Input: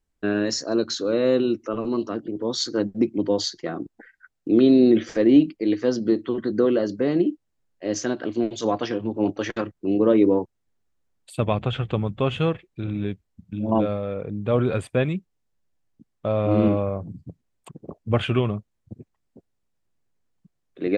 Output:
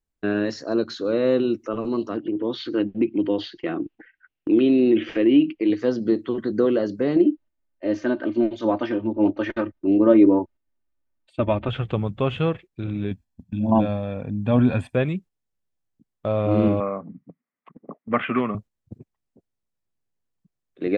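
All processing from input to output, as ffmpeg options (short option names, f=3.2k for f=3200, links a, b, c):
-filter_complex "[0:a]asettb=1/sr,asplit=3[a][b][c];[a]atrim=end=2.174[d];[b]atrim=start=2.17:end=5.7,asetpts=PTS-STARTPTS,afade=t=in:d=0.004:c=qsin,afade=t=out:st=3.526:d=0.004:c=qsin,equalizer=f=320:w=3:g=8,acompressor=threshold=-24dB:ratio=1.5:attack=3.2:release=140:knee=1:detection=peak,lowpass=f=2.8k:t=q:w=4.6[e];[c]atrim=start=5.696[f];[d][e]acrossfade=d=0.004:c1=hsin:c2=qsin[g];[g][f]acrossfade=d=0.004:c1=qsin:c2=hsin,asettb=1/sr,asplit=3[h][i][j];[h]atrim=end=7.164[k];[i]atrim=start=7.16:end=11.69,asetpts=PTS-STARTPTS,afade=t=in:d=0.004:c=qsin,afade=t=out:st=4.526:d=0.004:c=qsin,lowpass=2.9k,aecho=1:1:3.3:0.74,atrim=end_sample=199773[l];[j]atrim=start=11.686[m];[k][l]acrossfade=d=0.004:c1=hsin:c2=qsin[n];[n][m]acrossfade=d=0.004:c1=qsin:c2=hsin,asettb=1/sr,asplit=3[o][p][q];[o]atrim=end=13.114[r];[p]atrim=start=13.11:end=14.94,asetpts=PTS-STARTPTS,afade=t=in:d=0.004:c=qsin,afade=t=out:st=1.826:d=0.004:c=qsin,equalizer=f=250:t=o:w=0.27:g=9.5,aecho=1:1:1.2:0.59,atrim=end_sample=80703[s];[q]atrim=start=14.936[t];[r][s]acrossfade=d=0.004:c1=hsin:c2=qsin[u];[u][t]acrossfade=d=0.004:c1=qsin:c2=hsin,asettb=1/sr,asplit=3[v][w][x];[v]atrim=end=16.804[y];[w]atrim=start=16.8:end=18.55,asetpts=PTS-STARTPTS,afade=t=in:d=0.004:c=qsin,afade=t=out:st=1.746:d=0.004:c=qsin,asoftclip=type=hard:threshold=-12.5dB,highpass=f=180:w=0.5412,highpass=f=180:w=1.3066,equalizer=f=250:t=q:w=4:g=5,equalizer=f=360:t=q:w=4:g=-4,equalizer=f=1.2k:t=q:w=4:g=10,equalizer=f=2k:t=q:w=4:g=10,lowpass=f=2.6k:w=0.5412,lowpass=f=2.6k:w=1.3066[z];[x]atrim=start=18.546[aa];[y][z]acrossfade=d=0.004:c1=hsin:c2=qsin[ab];[ab][aa]acrossfade=d=0.004:c1=qsin:c2=hsin,agate=range=-7dB:threshold=-40dB:ratio=16:detection=peak,acrossover=split=3800[ac][ad];[ad]acompressor=threshold=-52dB:ratio=4:attack=1:release=60[ae];[ac][ae]amix=inputs=2:normalize=0"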